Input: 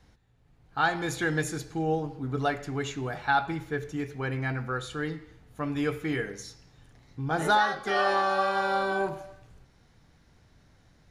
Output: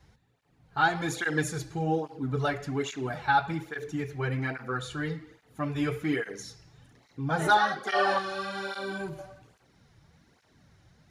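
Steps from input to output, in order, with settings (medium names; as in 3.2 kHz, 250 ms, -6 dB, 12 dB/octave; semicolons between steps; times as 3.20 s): 8.18–9.19 s: peaking EQ 790 Hz -13.5 dB 1.7 oct; cancelling through-zero flanger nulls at 1.2 Hz, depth 4.6 ms; trim +3 dB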